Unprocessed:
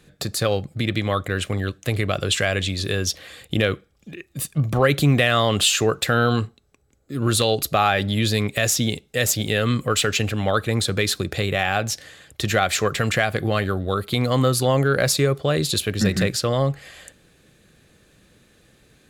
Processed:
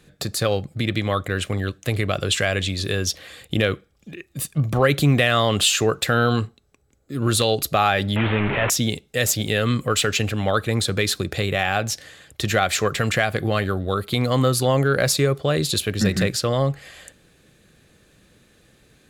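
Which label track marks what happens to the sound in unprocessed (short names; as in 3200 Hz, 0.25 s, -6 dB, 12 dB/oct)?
8.160000	8.700000	delta modulation 16 kbps, step -17 dBFS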